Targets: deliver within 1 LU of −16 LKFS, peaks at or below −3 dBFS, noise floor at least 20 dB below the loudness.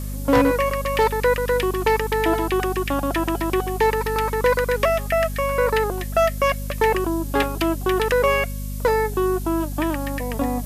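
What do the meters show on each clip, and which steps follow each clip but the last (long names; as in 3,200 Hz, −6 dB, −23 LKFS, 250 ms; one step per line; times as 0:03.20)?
mains hum 50 Hz; hum harmonics up to 250 Hz; level of the hum −26 dBFS; background noise floor −28 dBFS; target noise floor −42 dBFS; integrated loudness −21.5 LKFS; sample peak −6.0 dBFS; target loudness −16.0 LKFS
→ hum removal 50 Hz, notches 5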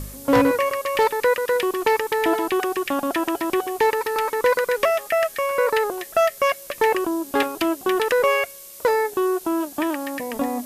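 mains hum none found; background noise floor −41 dBFS; target noise floor −42 dBFS
→ noise reduction from a noise print 6 dB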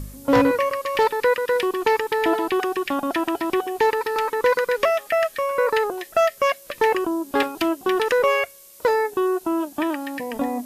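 background noise floor −46 dBFS; integrated loudness −22.0 LKFS; sample peak −6.5 dBFS; target loudness −16.0 LKFS
→ level +6 dB
brickwall limiter −3 dBFS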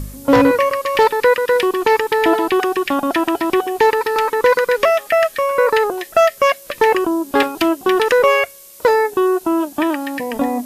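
integrated loudness −16.0 LKFS; sample peak −3.0 dBFS; background noise floor −40 dBFS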